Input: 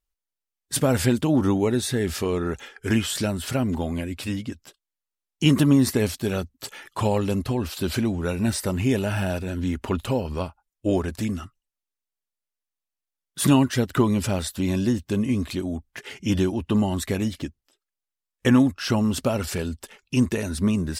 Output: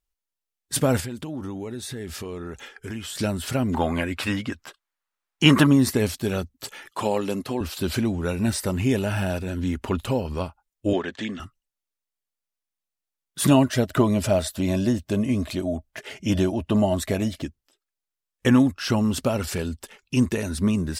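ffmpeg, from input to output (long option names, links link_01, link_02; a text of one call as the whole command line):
ffmpeg -i in.wav -filter_complex "[0:a]asettb=1/sr,asplit=3[link_01][link_02][link_03];[link_01]atrim=end=1.004[link_04];[link_02]atrim=start=1:end=3.19,asetpts=PTS-STARTPTS,afade=type=in:duration=0.004:curve=qsin,afade=type=out:start_time=2.186:duration=0.004:curve=qsin,acompressor=threshold=-33dB:ratio=3:attack=3.2:release=140:knee=1:detection=peak[link_05];[link_03]atrim=start=3.186[link_06];[link_04][link_05]acrossfade=duration=0.004:curve1=hsin:curve2=qsin[link_07];[link_07][link_06]acrossfade=duration=0.004:curve1=qsin:curve2=hsin,asettb=1/sr,asplit=3[link_08][link_09][link_10];[link_08]atrim=end=3.744[link_11];[link_09]atrim=start=3.74:end=5.67,asetpts=PTS-STARTPTS,afade=type=in:duration=0.004:curve=qsin,afade=type=out:start_time=1.926:duration=0.004:curve=qsin,equalizer=frequency=1300:width_type=o:width=2.3:gain=13[link_12];[link_10]atrim=start=5.666[link_13];[link_11][link_12]acrossfade=duration=0.004:curve1=hsin:curve2=qsin[link_14];[link_14][link_13]acrossfade=duration=0.004:curve1=qsin:curve2=hsin,asettb=1/sr,asplit=3[link_15][link_16][link_17];[link_15]atrim=end=6.914[link_18];[link_16]atrim=start=6.91:end=7.61,asetpts=PTS-STARTPTS,afade=type=in:duration=0.004:curve=qsin,afade=type=out:start_time=0.696:duration=0.004:curve=qsin,highpass=220[link_19];[link_17]atrim=start=7.606[link_20];[link_18][link_19]acrossfade=duration=0.004:curve1=hsin:curve2=qsin[link_21];[link_21][link_20]acrossfade=duration=0.004:curve1=qsin:curve2=hsin,asettb=1/sr,asplit=3[link_22][link_23][link_24];[link_22]atrim=end=10.934[link_25];[link_23]atrim=start=10.93:end=11.4,asetpts=PTS-STARTPTS,afade=type=in:duration=0.004:curve=qsin,afade=type=out:start_time=0.466:duration=0.004:curve=qsin,highpass=250,equalizer=frequency=1800:width_type=q:width=4:gain=9,equalizer=frequency=3300:width_type=q:width=4:gain=10,equalizer=frequency=5200:width_type=q:width=4:gain=-9,lowpass=frequency=6100:width=0.5412,lowpass=frequency=6100:width=1.3066[link_26];[link_24]atrim=start=11.396[link_27];[link_25][link_26]acrossfade=duration=0.004:curve1=hsin:curve2=qsin[link_28];[link_28][link_27]acrossfade=duration=0.004:curve1=qsin:curve2=hsin,asettb=1/sr,asplit=3[link_29][link_30][link_31];[link_29]atrim=end=13.494[link_32];[link_30]atrim=start=13.49:end=17.42,asetpts=PTS-STARTPTS,afade=type=in:duration=0.004:curve=qsin,afade=type=out:start_time=3.926:duration=0.004:curve=qsin,equalizer=frequency=630:width_type=o:width=0.21:gain=14.5[link_33];[link_31]atrim=start=17.416[link_34];[link_32][link_33]acrossfade=duration=0.004:curve1=hsin:curve2=qsin[link_35];[link_35][link_34]acrossfade=duration=0.004:curve1=qsin:curve2=hsin" out.wav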